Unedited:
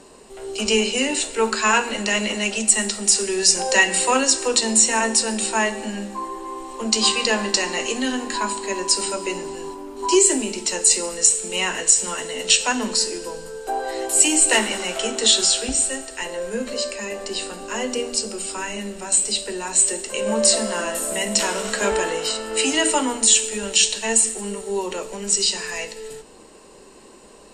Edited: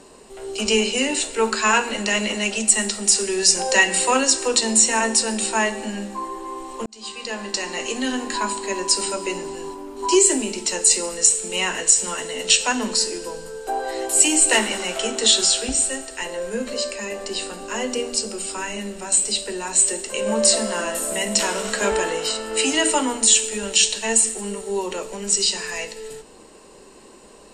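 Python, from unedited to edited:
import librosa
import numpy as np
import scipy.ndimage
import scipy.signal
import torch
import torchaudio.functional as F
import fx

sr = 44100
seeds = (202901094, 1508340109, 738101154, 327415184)

y = fx.edit(x, sr, fx.fade_in_span(start_s=6.86, length_s=1.31), tone=tone)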